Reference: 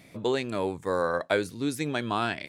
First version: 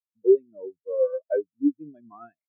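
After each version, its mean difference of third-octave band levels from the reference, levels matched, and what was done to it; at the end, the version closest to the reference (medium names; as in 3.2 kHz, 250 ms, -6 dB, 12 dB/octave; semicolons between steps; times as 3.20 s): 22.5 dB: spectral contrast expander 4:1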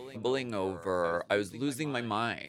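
1.5 dB: pre-echo 264 ms -16 dB; trim -3.5 dB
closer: second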